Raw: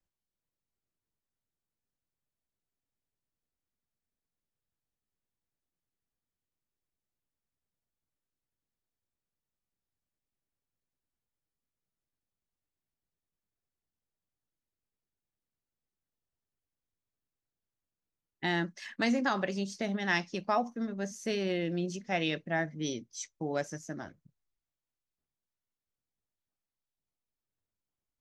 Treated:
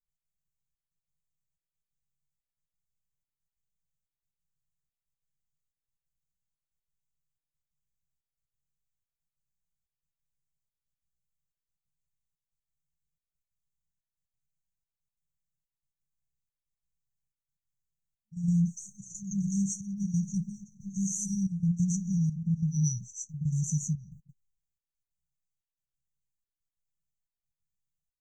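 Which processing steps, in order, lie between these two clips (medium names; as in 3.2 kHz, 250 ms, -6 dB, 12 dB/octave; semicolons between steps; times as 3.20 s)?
rippled EQ curve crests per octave 0.71, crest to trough 13 dB; trance gate ".x.xxxxxx." 181 bpm -12 dB; bass shelf 360 Hz +4 dB; gate -60 dBFS, range -14 dB; on a send: reverse echo 115 ms -12 dB; on the sum: FFT band-reject 210–5700 Hz; in parallel at +1 dB: compression, threshold -38 dBFS, peak gain reduction 9.5 dB; on the sum: trim +3.5 dB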